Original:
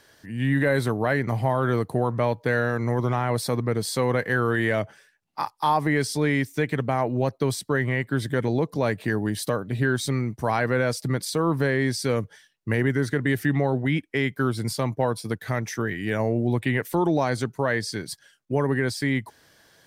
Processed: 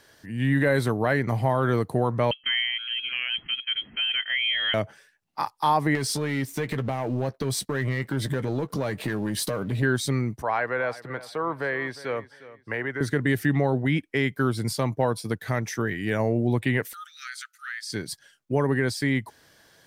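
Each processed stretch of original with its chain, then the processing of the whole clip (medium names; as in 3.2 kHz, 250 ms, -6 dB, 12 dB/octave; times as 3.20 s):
2.31–4.74 s: rippled Chebyshev high-pass 330 Hz, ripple 6 dB + frequency inversion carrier 3.6 kHz
5.95–9.83 s: compression 4:1, threshold -31 dBFS + waveshaping leveller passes 2 + doubling 15 ms -12 dB
10.42–13.01 s: three-band isolator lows -15 dB, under 470 Hz, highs -18 dB, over 3 kHz + band-stop 6.8 kHz, Q 15 + feedback delay 357 ms, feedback 25%, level -17 dB
16.93–17.90 s: brick-wall FIR high-pass 1.2 kHz + compression 2:1, threshold -35 dBFS
whole clip: none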